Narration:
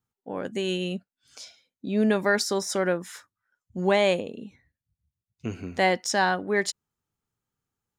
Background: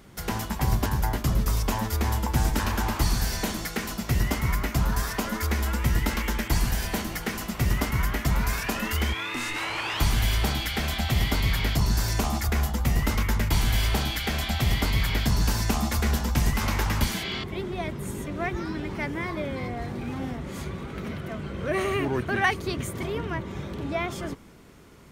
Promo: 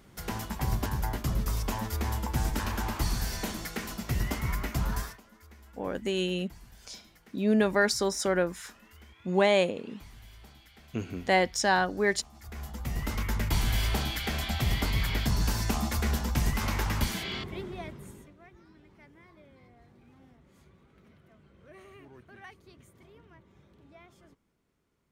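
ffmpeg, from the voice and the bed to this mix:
ffmpeg -i stem1.wav -i stem2.wav -filter_complex "[0:a]adelay=5500,volume=-1.5dB[link_01];[1:a]volume=18dB,afade=type=out:start_time=4.97:duration=0.22:silence=0.0794328,afade=type=in:start_time=12.34:duration=1.18:silence=0.0668344,afade=type=out:start_time=17.36:duration=1:silence=0.0841395[link_02];[link_01][link_02]amix=inputs=2:normalize=0" out.wav

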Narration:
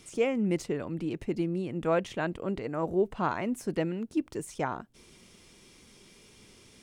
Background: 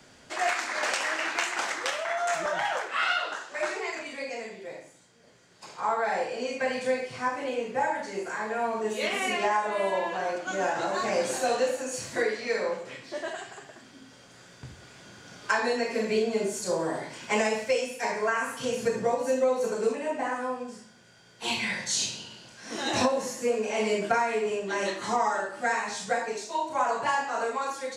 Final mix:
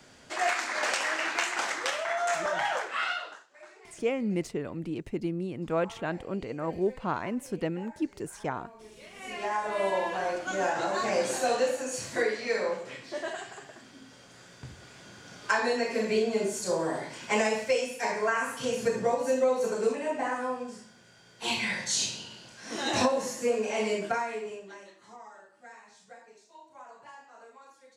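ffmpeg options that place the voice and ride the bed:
ffmpeg -i stem1.wav -i stem2.wav -filter_complex "[0:a]adelay=3850,volume=-1.5dB[link_01];[1:a]volume=20dB,afade=type=out:start_time=2.8:duration=0.67:silence=0.0944061,afade=type=in:start_time=9.14:duration=0.71:silence=0.0944061,afade=type=out:start_time=23.63:duration=1.22:silence=0.0794328[link_02];[link_01][link_02]amix=inputs=2:normalize=0" out.wav

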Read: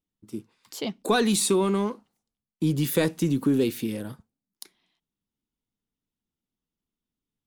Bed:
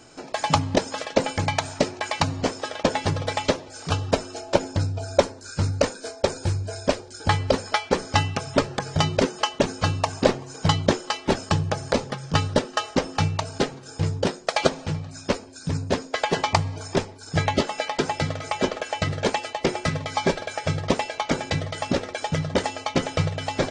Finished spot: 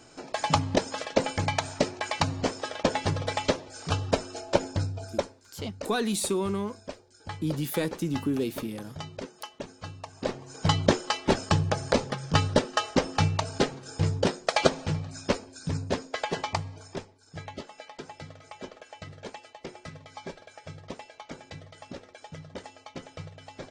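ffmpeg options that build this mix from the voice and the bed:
ffmpeg -i stem1.wav -i stem2.wav -filter_complex "[0:a]adelay=4800,volume=-5.5dB[link_01];[1:a]volume=12.5dB,afade=type=out:start_time=4.67:duration=0.76:silence=0.199526,afade=type=in:start_time=10.13:duration=0.73:silence=0.158489,afade=type=out:start_time=15.06:duration=2.16:silence=0.149624[link_02];[link_01][link_02]amix=inputs=2:normalize=0" out.wav

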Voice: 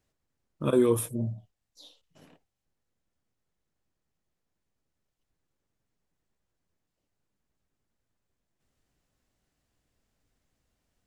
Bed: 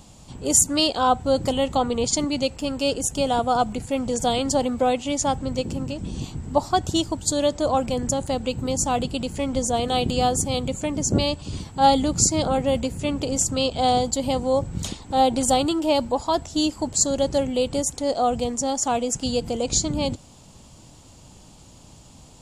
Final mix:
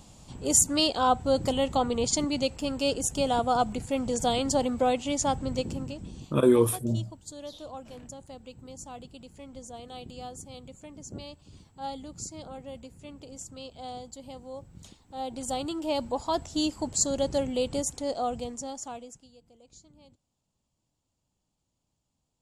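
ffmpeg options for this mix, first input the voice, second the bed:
ffmpeg -i stem1.wav -i stem2.wav -filter_complex "[0:a]adelay=5700,volume=2.5dB[link_01];[1:a]volume=10.5dB,afade=type=out:start_time=5.59:duration=0.79:silence=0.158489,afade=type=in:start_time=15.09:duration=1.31:silence=0.188365,afade=type=out:start_time=17.78:duration=1.5:silence=0.0446684[link_02];[link_01][link_02]amix=inputs=2:normalize=0" out.wav

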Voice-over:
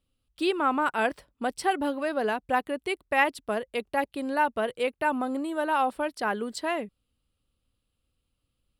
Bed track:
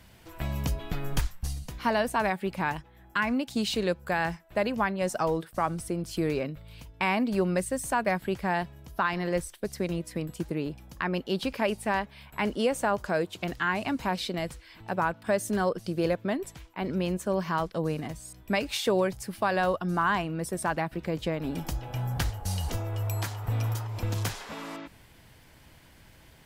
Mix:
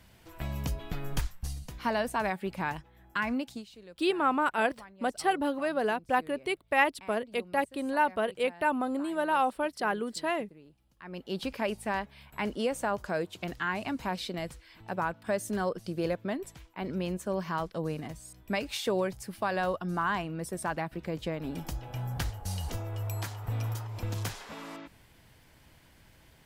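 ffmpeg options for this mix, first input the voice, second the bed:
ffmpeg -i stem1.wav -i stem2.wav -filter_complex "[0:a]adelay=3600,volume=-1.5dB[link_01];[1:a]volume=15.5dB,afade=type=out:start_time=3.42:duration=0.23:silence=0.105925,afade=type=in:start_time=10.99:duration=0.42:silence=0.112202[link_02];[link_01][link_02]amix=inputs=2:normalize=0" out.wav

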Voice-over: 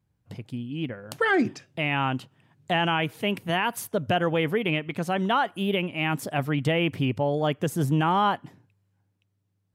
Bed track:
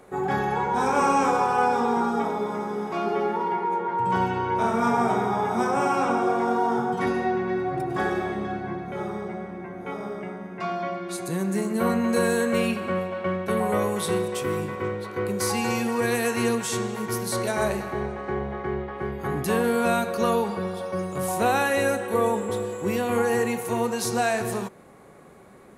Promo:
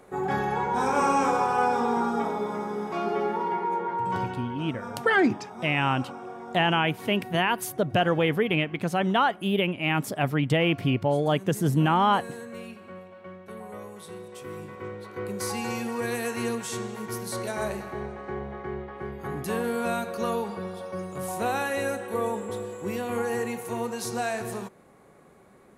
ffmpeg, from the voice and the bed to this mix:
ffmpeg -i stem1.wav -i stem2.wav -filter_complex "[0:a]adelay=3850,volume=1dB[link_01];[1:a]volume=9dB,afade=type=out:start_time=3.84:duration=0.8:silence=0.188365,afade=type=in:start_time=14.16:duration=1.2:silence=0.281838[link_02];[link_01][link_02]amix=inputs=2:normalize=0" out.wav

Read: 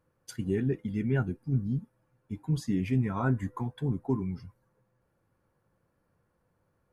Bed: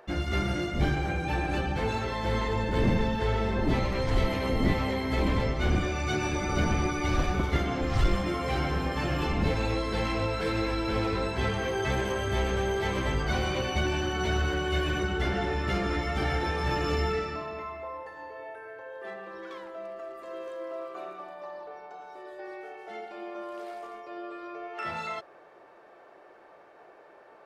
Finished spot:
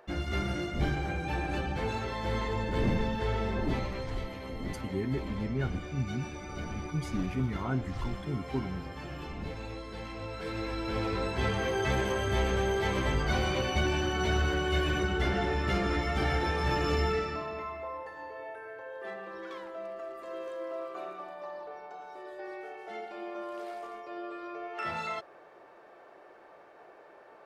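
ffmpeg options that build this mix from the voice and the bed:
ffmpeg -i stem1.wav -i stem2.wav -filter_complex "[0:a]adelay=4450,volume=-4.5dB[link_01];[1:a]volume=8dB,afade=type=out:start_time=3.56:duration=0.7:silence=0.375837,afade=type=in:start_time=10.15:duration=1.46:silence=0.266073[link_02];[link_01][link_02]amix=inputs=2:normalize=0" out.wav

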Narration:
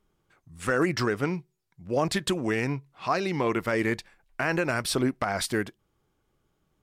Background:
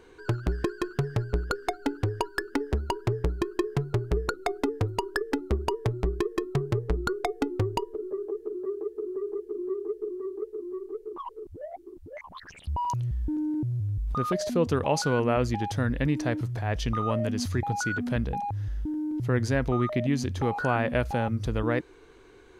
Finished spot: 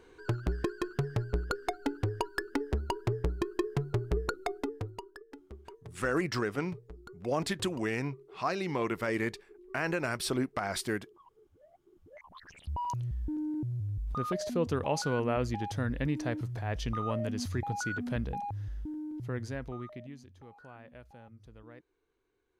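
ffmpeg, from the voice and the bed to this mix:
ffmpeg -i stem1.wav -i stem2.wav -filter_complex "[0:a]adelay=5350,volume=-5.5dB[link_01];[1:a]volume=12dB,afade=type=out:start_time=4.31:duration=0.86:silence=0.133352,afade=type=in:start_time=11.81:duration=0.76:silence=0.158489,afade=type=out:start_time=18.43:duration=1.83:silence=0.1[link_02];[link_01][link_02]amix=inputs=2:normalize=0" out.wav

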